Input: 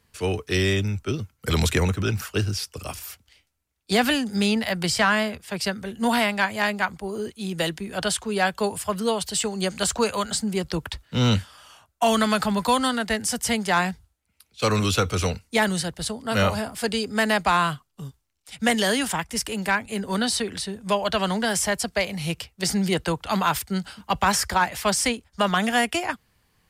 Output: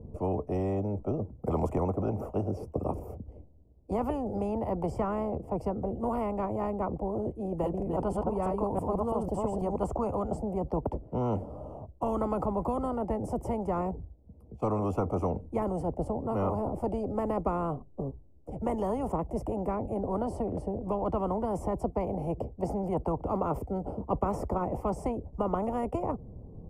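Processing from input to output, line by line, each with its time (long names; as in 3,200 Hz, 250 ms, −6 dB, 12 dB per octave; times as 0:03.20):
0:07.47–0:09.76: delay that plays each chunk backwards 165 ms, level −2 dB
whole clip: inverse Chebyshev low-pass filter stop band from 1,500 Hz, stop band 50 dB; every bin compressed towards the loudest bin 4 to 1; level −3.5 dB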